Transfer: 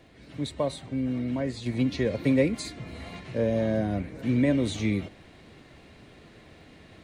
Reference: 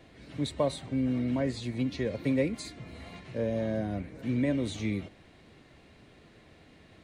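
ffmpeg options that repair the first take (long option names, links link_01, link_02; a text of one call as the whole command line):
ffmpeg -i in.wav -af "adeclick=threshold=4,asetnsamples=nb_out_samples=441:pad=0,asendcmd='1.66 volume volume -5dB',volume=0dB" out.wav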